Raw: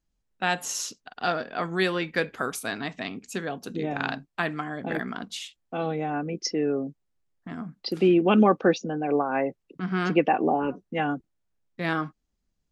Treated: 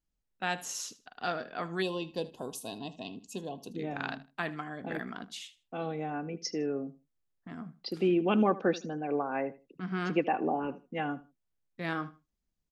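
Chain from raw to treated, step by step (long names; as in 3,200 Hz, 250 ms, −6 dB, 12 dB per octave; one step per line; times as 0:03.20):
repeating echo 78 ms, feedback 23%, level −18 dB
gain on a spectral selection 0:01.82–0:03.76, 1,100–2,500 Hz −23 dB
level −7 dB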